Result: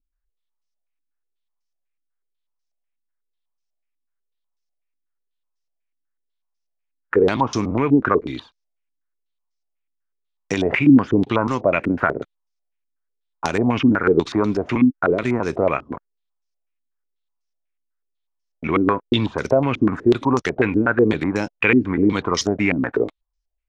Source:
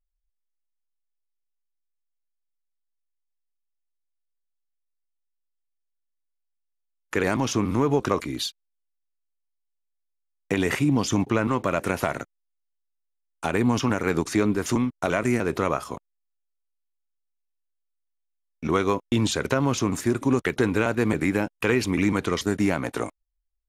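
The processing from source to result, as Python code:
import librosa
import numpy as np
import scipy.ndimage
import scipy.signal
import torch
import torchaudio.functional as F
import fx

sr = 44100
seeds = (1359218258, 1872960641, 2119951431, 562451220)

y = fx.filter_held_lowpass(x, sr, hz=8.1, low_hz=280.0, high_hz=5600.0)
y = y * 10.0 ** (1.5 / 20.0)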